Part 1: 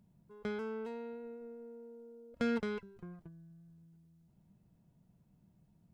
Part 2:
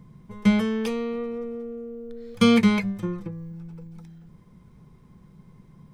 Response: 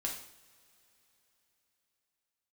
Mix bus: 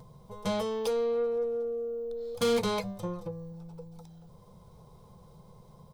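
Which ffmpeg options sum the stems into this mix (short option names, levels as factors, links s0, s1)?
-filter_complex "[0:a]volume=0.596[s0];[1:a]firequalizer=gain_entry='entry(110,0);entry(280,-10);entry(490,14);entry(910,14);entry(1800,-2);entry(3800,14);entry(7300,10)':delay=0.05:min_phase=1,asoftclip=type=tanh:threshold=0.168,crystalizer=i=1:c=0,volume=-1,adelay=3.2,volume=0.355[s1];[s0][s1]amix=inputs=2:normalize=0,acompressor=mode=upward:threshold=0.00316:ratio=2.5,tiltshelf=f=720:g=4.5"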